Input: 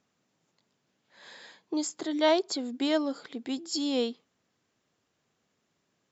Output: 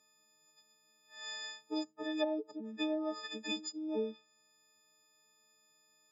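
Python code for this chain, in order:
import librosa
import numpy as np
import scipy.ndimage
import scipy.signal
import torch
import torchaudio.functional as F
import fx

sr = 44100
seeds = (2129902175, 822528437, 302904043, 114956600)

y = fx.freq_snap(x, sr, grid_st=6)
y = fx.bass_treble(y, sr, bass_db=-8, treble_db=3)
y = fx.env_lowpass_down(y, sr, base_hz=350.0, full_db=-19.5)
y = F.gain(torch.from_numpy(y), -4.0).numpy()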